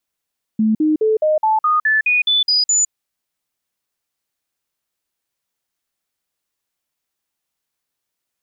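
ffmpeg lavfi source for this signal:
ffmpeg -f lavfi -i "aevalsrc='0.251*clip(min(mod(t,0.21),0.16-mod(t,0.21))/0.005,0,1)*sin(2*PI*218*pow(2,floor(t/0.21)/2)*mod(t,0.21))':duration=2.31:sample_rate=44100" out.wav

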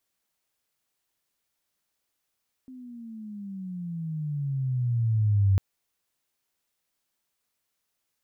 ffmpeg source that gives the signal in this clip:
ffmpeg -f lavfi -i "aevalsrc='pow(10,(-17+24*(t/2.9-1))/20)*sin(2*PI*261*2.9/(-17.5*log(2)/12)*(exp(-17.5*log(2)/12*t/2.9)-1))':duration=2.9:sample_rate=44100" out.wav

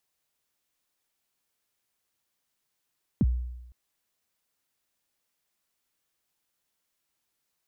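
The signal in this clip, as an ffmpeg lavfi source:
ffmpeg -f lavfi -i "aevalsrc='0.141*pow(10,-3*t/0.97)*sin(2*PI*(290*0.039/log(61/290)*(exp(log(61/290)*min(t,0.039)/0.039)-1)+61*max(t-0.039,0)))':duration=0.51:sample_rate=44100" out.wav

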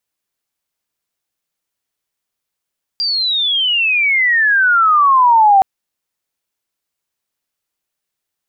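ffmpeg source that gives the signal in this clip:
ffmpeg -f lavfi -i "aevalsrc='pow(10,(-14.5+9*t/2.62)/20)*sin(2*PI*4800*2.62/log(760/4800)*(exp(log(760/4800)*t/2.62)-1))':duration=2.62:sample_rate=44100" out.wav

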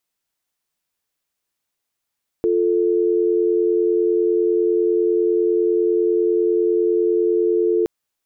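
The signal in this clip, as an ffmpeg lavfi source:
ffmpeg -f lavfi -i "aevalsrc='0.133*(sin(2*PI*350*t)+sin(2*PI*440*t))':duration=5.42:sample_rate=44100" out.wav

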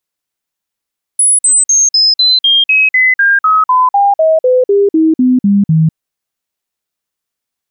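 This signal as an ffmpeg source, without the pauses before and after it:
ffmpeg -f lavfi -i "aevalsrc='0.531*clip(min(mod(t,0.25),0.2-mod(t,0.25))/0.005,0,1)*sin(2*PI*10200*pow(2,-floor(t/0.25)/3)*mod(t,0.25))':duration=4.75:sample_rate=44100" out.wav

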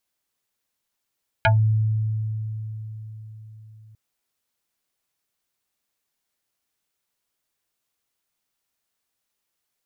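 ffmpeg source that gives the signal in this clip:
ffmpeg -f lavfi -i "aevalsrc='0.224*pow(10,-3*t/4.57)*sin(2*PI*109*t+3.8*pow(10,-3*t/0.15)*sin(2*PI*7.09*109*t))':duration=2.5:sample_rate=44100" out.wav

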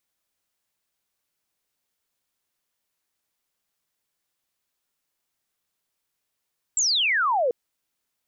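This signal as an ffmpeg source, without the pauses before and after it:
ffmpeg -f lavfi -i "aevalsrc='0.112*clip(t/0.002,0,1)*clip((0.74-t)/0.002,0,1)*sin(2*PI*7800*0.74/log(460/7800)*(exp(log(460/7800)*t/0.74)-1))':duration=0.74:sample_rate=44100" out.wav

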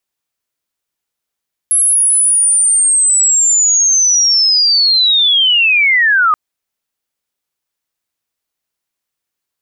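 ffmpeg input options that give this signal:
ffmpeg -f lavfi -i "aevalsrc='pow(10,(-8+0.5*t/4.63)/20)*sin(2*PI*(11000*t-9800*t*t/(2*4.63)))':duration=4.63:sample_rate=44100" out.wav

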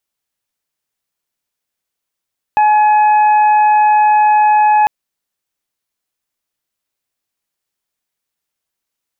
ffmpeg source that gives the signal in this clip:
ffmpeg -f lavfi -i "aevalsrc='0.447*sin(2*PI*847*t)+0.0631*sin(2*PI*1694*t)+0.0562*sin(2*PI*2541*t)':duration=2.3:sample_rate=44100" out.wav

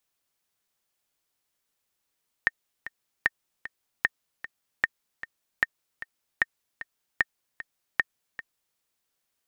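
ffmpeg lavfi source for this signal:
ffmpeg -f lavfi -i "aevalsrc='pow(10,(-7.5-15*gte(mod(t,2*60/152),60/152))/20)*sin(2*PI*1830*mod(t,60/152))*exp(-6.91*mod(t,60/152)/0.03)':duration=6.31:sample_rate=44100" out.wav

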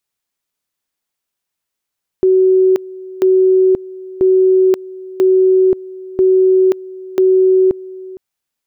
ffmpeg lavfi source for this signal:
ffmpeg -f lavfi -i "aevalsrc='pow(10,(-7-20*gte(mod(t,0.99),0.53))/20)*sin(2*PI*375*t)':duration=5.94:sample_rate=44100" out.wav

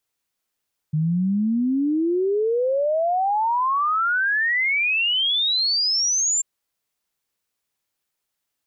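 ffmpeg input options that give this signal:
ffmpeg -f lavfi -i "aevalsrc='0.126*clip(min(t,5.49-t)/0.01,0,1)*sin(2*PI*150*5.49/log(7400/150)*(exp(log(7400/150)*t/5.49)-1))':duration=5.49:sample_rate=44100" out.wav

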